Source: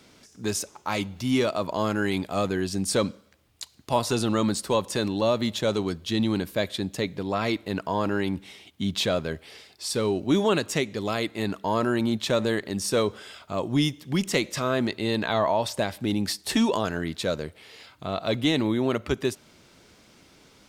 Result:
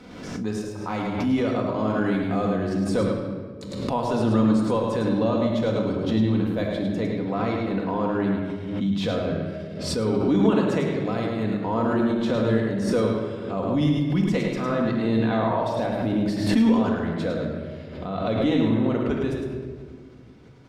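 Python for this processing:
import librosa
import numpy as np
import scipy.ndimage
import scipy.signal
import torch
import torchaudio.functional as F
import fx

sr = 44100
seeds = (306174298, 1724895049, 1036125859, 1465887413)

y = fx.lowpass(x, sr, hz=1200.0, slope=6)
y = y + 10.0 ** (-5.0 / 20.0) * np.pad(y, (int(106 * sr / 1000.0), 0))[:len(y)]
y = fx.room_shoebox(y, sr, seeds[0], volume_m3=2000.0, walls='mixed', distance_m=1.9)
y = fx.pre_swell(y, sr, db_per_s=45.0)
y = y * librosa.db_to_amplitude(-2.0)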